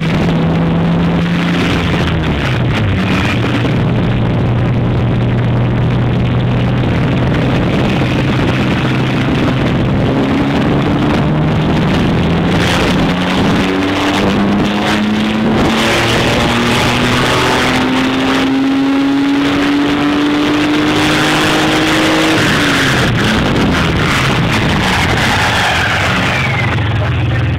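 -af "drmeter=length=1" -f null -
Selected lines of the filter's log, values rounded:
Channel 1: DR: 0.7
Overall DR: 0.7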